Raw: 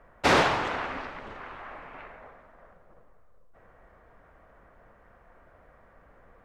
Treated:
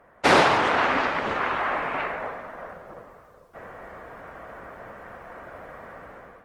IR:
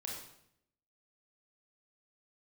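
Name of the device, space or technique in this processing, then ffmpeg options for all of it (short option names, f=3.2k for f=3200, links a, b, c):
video call: -af "highpass=f=180:p=1,dynaudnorm=f=220:g=5:m=13dB,volume=4dB" -ar 48000 -c:a libopus -b:a 24k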